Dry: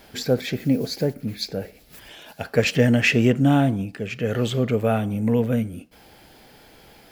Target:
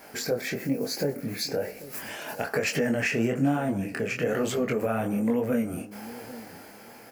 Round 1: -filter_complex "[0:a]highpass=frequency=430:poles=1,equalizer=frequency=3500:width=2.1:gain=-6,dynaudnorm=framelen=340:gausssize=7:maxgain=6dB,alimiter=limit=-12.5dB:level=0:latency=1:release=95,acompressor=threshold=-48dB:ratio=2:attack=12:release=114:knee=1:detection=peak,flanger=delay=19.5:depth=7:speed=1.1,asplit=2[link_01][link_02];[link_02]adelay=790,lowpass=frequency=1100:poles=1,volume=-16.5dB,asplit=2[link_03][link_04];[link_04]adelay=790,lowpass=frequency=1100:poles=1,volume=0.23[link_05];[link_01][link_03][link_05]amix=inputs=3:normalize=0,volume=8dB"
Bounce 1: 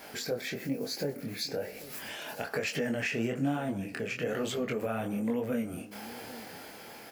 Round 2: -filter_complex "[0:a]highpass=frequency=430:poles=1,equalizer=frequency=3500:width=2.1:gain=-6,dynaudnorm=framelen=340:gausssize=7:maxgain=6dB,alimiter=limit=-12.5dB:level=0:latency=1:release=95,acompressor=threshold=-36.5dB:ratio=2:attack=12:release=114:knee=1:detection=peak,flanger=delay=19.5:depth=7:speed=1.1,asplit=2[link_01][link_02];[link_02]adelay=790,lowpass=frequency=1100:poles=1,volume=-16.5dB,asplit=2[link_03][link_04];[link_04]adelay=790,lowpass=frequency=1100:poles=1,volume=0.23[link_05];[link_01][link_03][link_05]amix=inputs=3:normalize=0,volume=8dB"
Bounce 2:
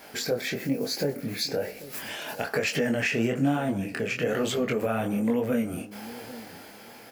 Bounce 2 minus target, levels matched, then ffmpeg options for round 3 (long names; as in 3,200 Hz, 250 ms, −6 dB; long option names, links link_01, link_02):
4,000 Hz band +3.0 dB
-filter_complex "[0:a]highpass=frequency=430:poles=1,equalizer=frequency=3500:width=2.1:gain=-14,dynaudnorm=framelen=340:gausssize=7:maxgain=6dB,alimiter=limit=-12.5dB:level=0:latency=1:release=95,acompressor=threshold=-36.5dB:ratio=2:attack=12:release=114:knee=1:detection=peak,flanger=delay=19.5:depth=7:speed=1.1,asplit=2[link_01][link_02];[link_02]adelay=790,lowpass=frequency=1100:poles=1,volume=-16.5dB,asplit=2[link_03][link_04];[link_04]adelay=790,lowpass=frequency=1100:poles=1,volume=0.23[link_05];[link_01][link_03][link_05]amix=inputs=3:normalize=0,volume=8dB"